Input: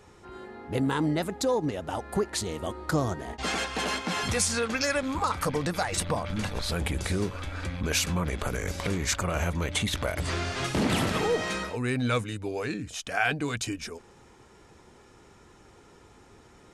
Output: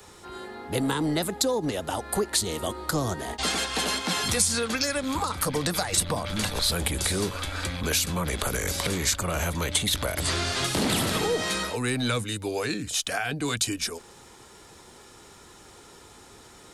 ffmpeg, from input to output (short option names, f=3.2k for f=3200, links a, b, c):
-filter_complex "[0:a]lowshelf=f=430:g=-5.5,acrossover=split=390[a][b];[b]acompressor=threshold=-33dB:ratio=6[c];[a][c]amix=inputs=2:normalize=0,acrossover=split=320|470|4600[d][e][f][g];[d]asoftclip=type=hard:threshold=-33dB[h];[h][e][f][g]amix=inputs=4:normalize=0,aexciter=amount=2.5:drive=2.8:freq=3.4k,volume=6dB"